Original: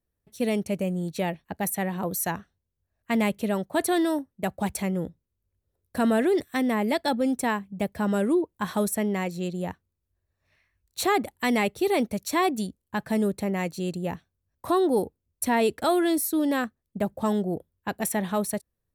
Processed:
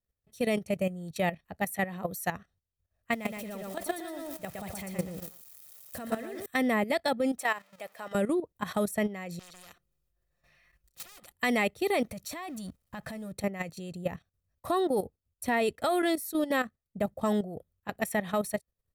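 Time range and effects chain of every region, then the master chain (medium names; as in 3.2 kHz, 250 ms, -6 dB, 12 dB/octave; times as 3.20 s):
3.13–6.46 s: zero-crossing glitches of -31 dBFS + compression 16:1, threshold -24 dBFS + bit-crushed delay 119 ms, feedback 35%, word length 8-bit, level -3 dB
7.38–8.15 s: jump at every zero crossing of -43 dBFS + high-pass 610 Hz
9.39–11.33 s: comb 5.7 ms, depth 83% + overload inside the chain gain 24.5 dB + spectrum-flattening compressor 4:1
12.03–13.32 s: companding laws mixed up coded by mu + band-stop 400 Hz, Q 5.6 + compression 4:1, threshold -31 dBFS
whole clip: comb 1.6 ms, depth 36%; dynamic bell 2.1 kHz, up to +4 dB, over -46 dBFS, Q 2.7; level held to a coarse grid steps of 13 dB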